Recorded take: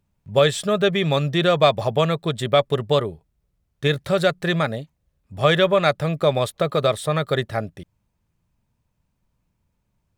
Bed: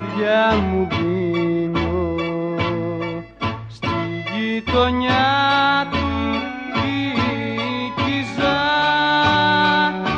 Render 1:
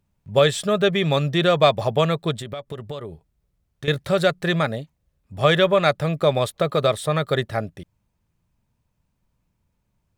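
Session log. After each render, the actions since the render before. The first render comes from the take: 2.34–3.88 compressor, threshold -29 dBFS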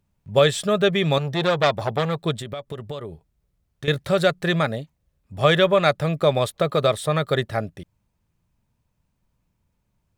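1.18–2.17 core saturation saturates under 1600 Hz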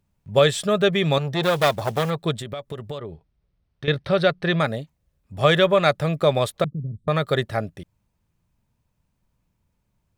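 1.43–2.11 block floating point 5-bit; 2.98–4.6 polynomial smoothing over 15 samples; 6.64–7.08 inverse Chebyshev low-pass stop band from 750 Hz, stop band 60 dB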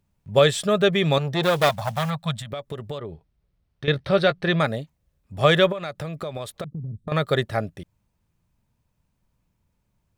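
1.69–2.51 Chebyshev band-stop 190–690 Hz; 3.97–4.48 doubler 15 ms -10 dB; 5.72–7.12 compressor, threshold -28 dBFS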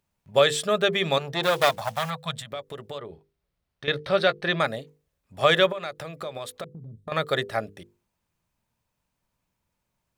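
low shelf 260 Hz -11.5 dB; notches 50/100/150/200/250/300/350/400/450/500 Hz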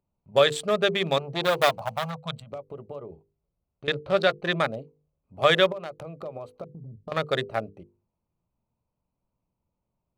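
Wiener smoothing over 25 samples; notches 50/100/150 Hz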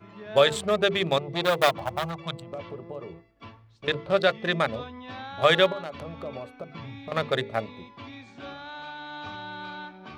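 add bed -22.5 dB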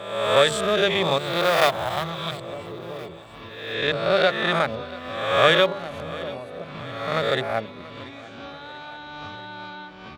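spectral swells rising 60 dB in 1.05 s; feedback echo 0.686 s, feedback 60%, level -19 dB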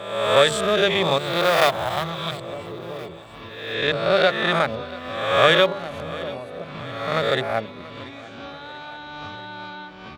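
gain +1.5 dB; limiter -2 dBFS, peak gain reduction 1 dB

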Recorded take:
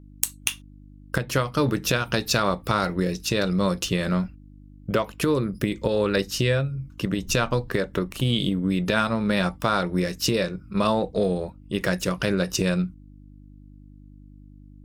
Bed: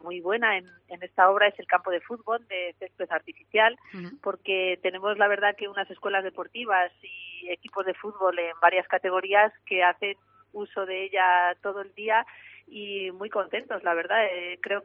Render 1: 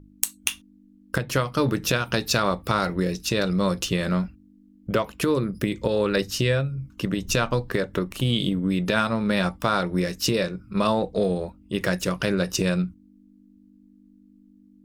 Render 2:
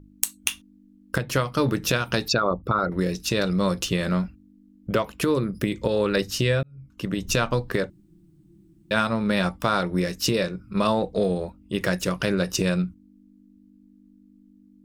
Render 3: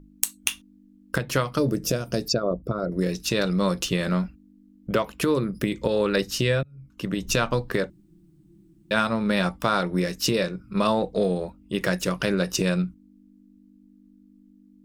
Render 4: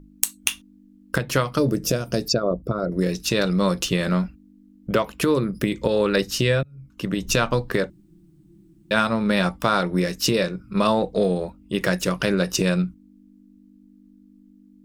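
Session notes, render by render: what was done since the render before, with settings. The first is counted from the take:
de-hum 50 Hz, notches 3
2.28–2.92 formant sharpening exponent 2; 6.63–7.21 fade in; 7.9–8.91 room tone
1.58–3.02 spectral gain 720–4500 Hz -12 dB; bell 94 Hz -14.5 dB 0.24 oct
gain +2.5 dB

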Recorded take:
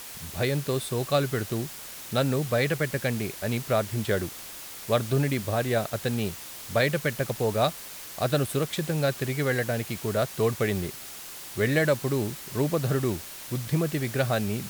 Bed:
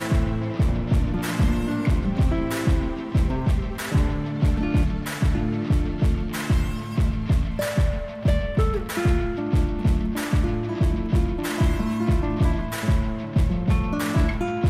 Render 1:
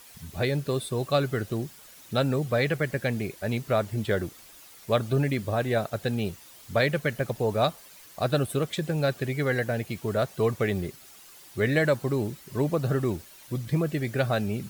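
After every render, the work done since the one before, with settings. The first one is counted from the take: denoiser 11 dB, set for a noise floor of -41 dBFS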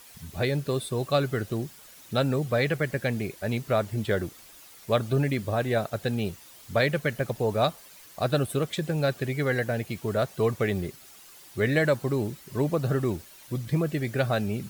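nothing audible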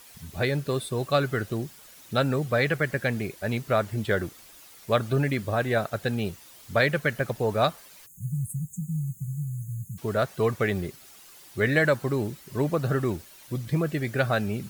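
8.06–9.98 spectral delete 200–6300 Hz; dynamic EQ 1500 Hz, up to +5 dB, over -41 dBFS, Q 1.4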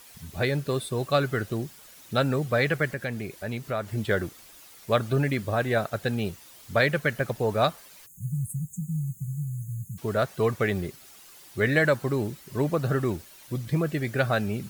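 2.92–3.88 compressor 1.5:1, threshold -35 dBFS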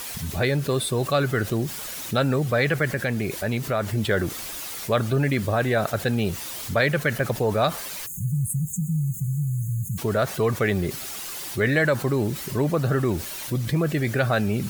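fast leveller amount 50%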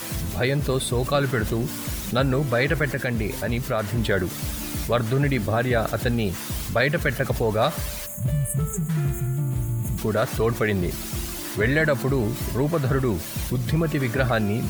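add bed -10.5 dB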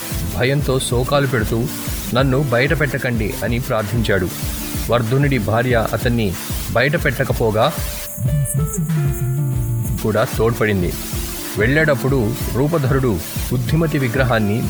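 gain +6 dB; limiter -2 dBFS, peak gain reduction 1.5 dB

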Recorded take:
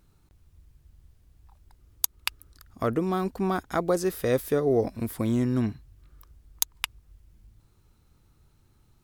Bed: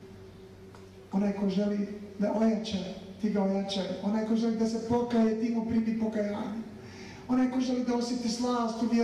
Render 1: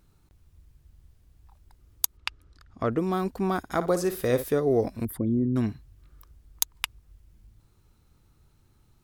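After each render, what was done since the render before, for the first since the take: 2.17–2.98 air absorption 100 m; 3.58–4.44 flutter echo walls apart 9.8 m, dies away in 0.29 s; 5.05–5.56 formant sharpening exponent 2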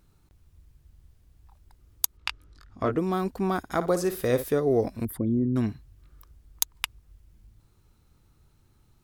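2.19–2.96 doubler 20 ms -4 dB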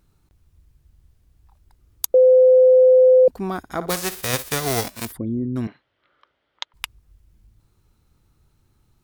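2.14–3.28 bleep 512 Hz -8.5 dBFS; 3.89–5.11 spectral whitening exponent 0.3; 5.67–6.74 speaker cabinet 400–4100 Hz, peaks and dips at 570 Hz +10 dB, 890 Hz +5 dB, 1400 Hz +8 dB, 2000 Hz +8 dB, 3200 Hz +9 dB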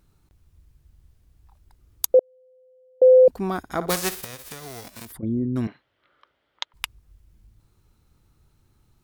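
2.19–3.02 ladder band-pass 3200 Hz, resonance 80%; 4.24–5.23 compressor 5:1, threshold -36 dBFS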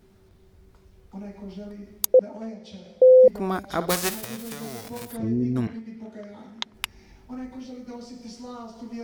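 add bed -10 dB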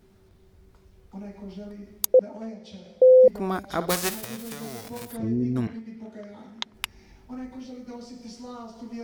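gain -1 dB

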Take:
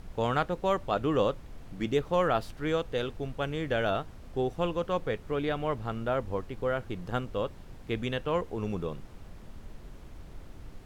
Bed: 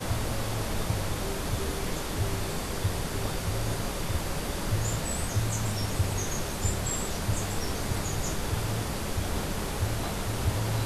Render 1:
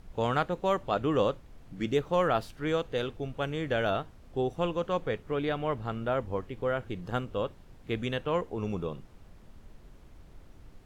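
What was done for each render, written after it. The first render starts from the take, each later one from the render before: noise print and reduce 6 dB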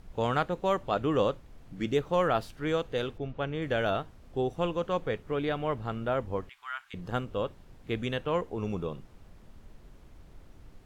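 3.18–3.62 air absorption 150 m; 6.49–6.94 inverse Chebyshev high-pass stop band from 540 Hz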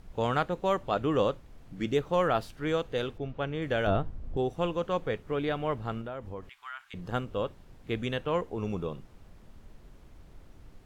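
3.87–4.37 tilt -3 dB/oct; 6.01–6.95 compressor 3:1, threshold -37 dBFS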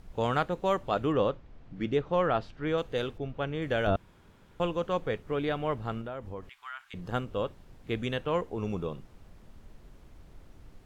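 1.12–2.78 air absorption 150 m; 3.96–4.6 room tone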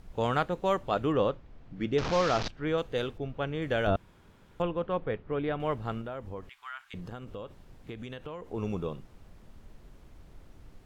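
1.98–2.48 delta modulation 32 kbps, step -26 dBFS; 4.62–5.6 air absorption 310 m; 7.07–8.54 compressor 8:1, threshold -36 dBFS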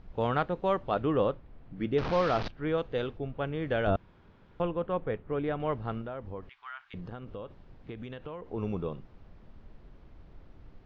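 LPF 5200 Hz 24 dB/oct; high shelf 3300 Hz -8.5 dB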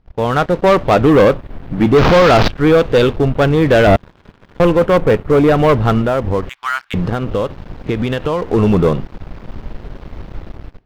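AGC gain up to 12.5 dB; sample leveller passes 3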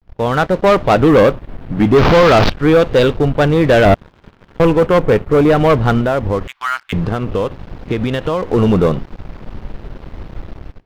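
vibrato 0.38 Hz 70 cents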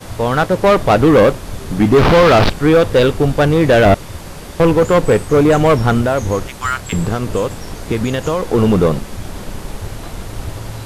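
add bed 0 dB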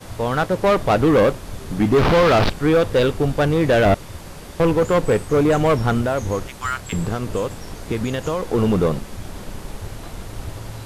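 gain -5.5 dB

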